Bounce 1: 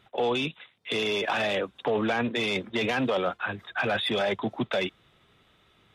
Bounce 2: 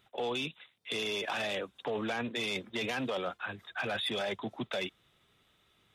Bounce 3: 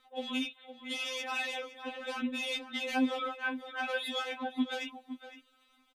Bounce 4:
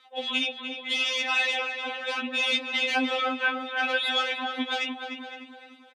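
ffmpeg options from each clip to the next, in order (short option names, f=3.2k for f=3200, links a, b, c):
-af "highshelf=f=4.6k:g=10.5,volume=-8.5dB"
-filter_complex "[0:a]aphaser=in_gain=1:out_gain=1:delay=3.9:decay=0.29:speed=0.44:type=sinusoidal,asplit=2[a][b];[b]adelay=513.1,volume=-11dB,highshelf=f=4k:g=-11.5[c];[a][c]amix=inputs=2:normalize=0,afftfilt=real='re*3.46*eq(mod(b,12),0)':imag='im*3.46*eq(mod(b,12),0)':win_size=2048:overlap=0.75,volume=2dB"
-filter_complex "[0:a]crystalizer=i=6:c=0,highpass=320,lowpass=3.2k,asplit=2[a][b];[b]adelay=299,lowpass=f=2.3k:p=1,volume=-5.5dB,asplit=2[c][d];[d]adelay=299,lowpass=f=2.3k:p=1,volume=0.46,asplit=2[e][f];[f]adelay=299,lowpass=f=2.3k:p=1,volume=0.46,asplit=2[g][h];[h]adelay=299,lowpass=f=2.3k:p=1,volume=0.46,asplit=2[i][j];[j]adelay=299,lowpass=f=2.3k:p=1,volume=0.46,asplit=2[k][l];[l]adelay=299,lowpass=f=2.3k:p=1,volume=0.46[m];[c][e][g][i][k][m]amix=inputs=6:normalize=0[n];[a][n]amix=inputs=2:normalize=0,volume=4dB"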